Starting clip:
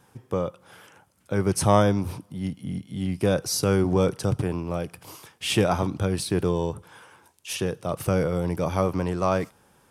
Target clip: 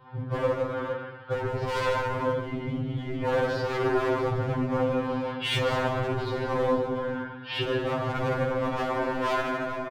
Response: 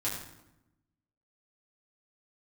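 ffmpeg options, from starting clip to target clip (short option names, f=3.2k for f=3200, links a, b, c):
-filter_complex "[0:a]lowpass=2.3k,equalizer=f=230:t=o:w=1.2:g=-6,aecho=1:1:47|61|161|250|325|464:0.282|0.133|0.501|0.106|0.2|0.168[a];[1:a]atrim=start_sample=2205[b];[a][b]afir=irnorm=-1:irlink=0,aresample=11025,volume=17.5dB,asoftclip=hard,volume=-17.5dB,aresample=44100,acompressor=threshold=-26dB:ratio=4,asplit=2[c][d];[d]aeval=exprs='0.0335*(abs(mod(val(0)/0.0335+3,4)-2)-1)':c=same,volume=-4.5dB[e];[c][e]amix=inputs=2:normalize=0,afftfilt=real='re*2.45*eq(mod(b,6),0)':imag='im*2.45*eq(mod(b,6),0)':win_size=2048:overlap=0.75,volume=4.5dB"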